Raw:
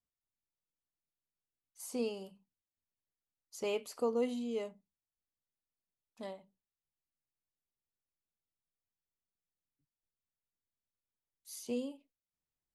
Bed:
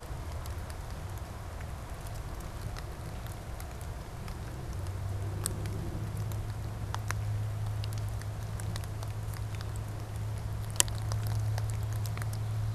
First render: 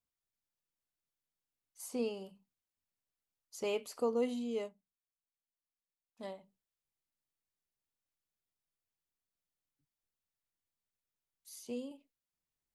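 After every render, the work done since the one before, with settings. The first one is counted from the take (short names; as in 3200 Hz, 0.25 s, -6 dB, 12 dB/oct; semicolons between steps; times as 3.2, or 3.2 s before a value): 1.88–2.29 tone controls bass 0 dB, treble -4 dB; 4.62–6.24 upward expander, over -60 dBFS; 11.49–11.91 gain -4 dB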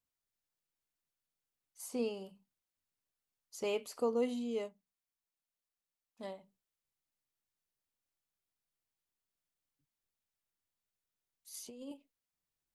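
11.54–11.94 negative-ratio compressor -47 dBFS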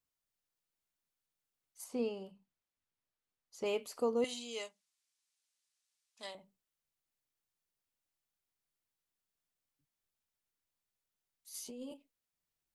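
1.84–3.66 LPF 3700 Hz 6 dB/oct; 4.24–6.35 weighting filter ITU-R 468; 11.54–11.94 doubler 12 ms -2.5 dB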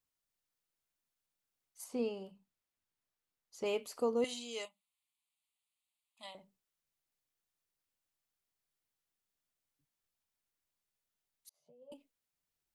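4.65–6.35 fixed phaser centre 1600 Hz, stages 6; 11.49–11.92 double band-pass 300 Hz, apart 2 oct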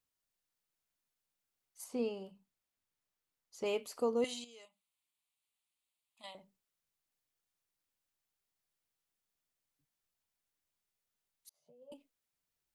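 4.44–6.24 compressor 3:1, threshold -58 dBFS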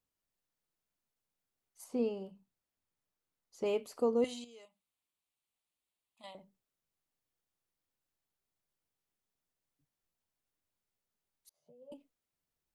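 tilt shelf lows +4 dB; notches 60/120 Hz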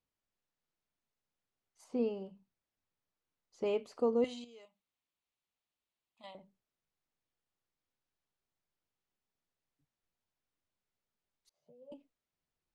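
air absorption 86 m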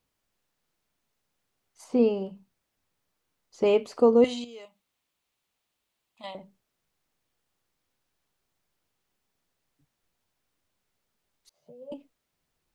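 gain +11.5 dB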